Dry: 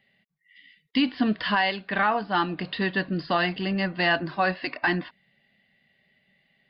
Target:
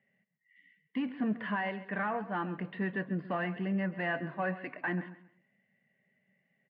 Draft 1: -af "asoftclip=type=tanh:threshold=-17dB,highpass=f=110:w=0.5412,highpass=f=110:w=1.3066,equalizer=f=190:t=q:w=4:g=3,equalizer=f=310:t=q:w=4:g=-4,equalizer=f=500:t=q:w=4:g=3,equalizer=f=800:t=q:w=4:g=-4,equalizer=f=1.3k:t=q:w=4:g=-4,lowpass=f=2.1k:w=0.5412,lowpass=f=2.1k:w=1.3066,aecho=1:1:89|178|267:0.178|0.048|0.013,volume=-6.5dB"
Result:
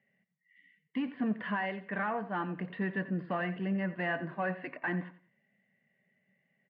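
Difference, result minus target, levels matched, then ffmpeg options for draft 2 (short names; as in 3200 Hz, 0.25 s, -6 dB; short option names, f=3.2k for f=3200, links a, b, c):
echo 46 ms early
-af "asoftclip=type=tanh:threshold=-17dB,highpass=f=110:w=0.5412,highpass=f=110:w=1.3066,equalizer=f=190:t=q:w=4:g=3,equalizer=f=310:t=q:w=4:g=-4,equalizer=f=500:t=q:w=4:g=3,equalizer=f=800:t=q:w=4:g=-4,equalizer=f=1.3k:t=q:w=4:g=-4,lowpass=f=2.1k:w=0.5412,lowpass=f=2.1k:w=1.3066,aecho=1:1:135|270|405:0.178|0.048|0.013,volume=-6.5dB"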